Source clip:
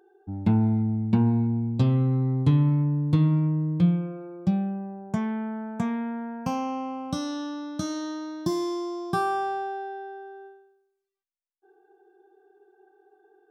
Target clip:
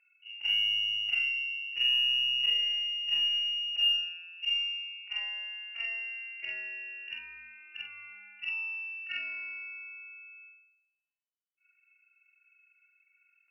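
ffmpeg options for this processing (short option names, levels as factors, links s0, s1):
-af "afftfilt=real='re':imag='-im':win_size=4096:overlap=0.75,lowpass=f=2600:t=q:w=0.5098,lowpass=f=2600:t=q:w=0.6013,lowpass=f=2600:t=q:w=0.9,lowpass=f=2600:t=q:w=2.563,afreqshift=-3000,aeval=exprs='0.2*(cos(1*acos(clip(val(0)/0.2,-1,1)))-cos(1*PI/2))+0.002*(cos(6*acos(clip(val(0)/0.2,-1,1)))-cos(6*PI/2))':c=same,volume=0.596"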